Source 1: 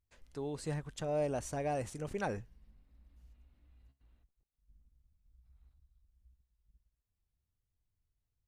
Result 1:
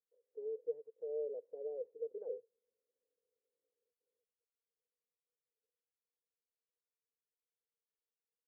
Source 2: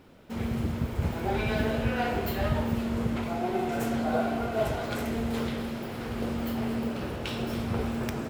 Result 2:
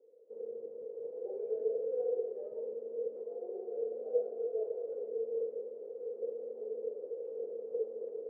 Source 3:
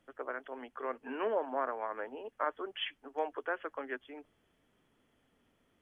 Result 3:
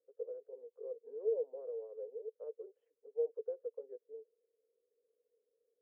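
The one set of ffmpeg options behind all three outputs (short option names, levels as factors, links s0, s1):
-af "asuperpass=centerf=470:order=4:qfactor=6.7,volume=1.68"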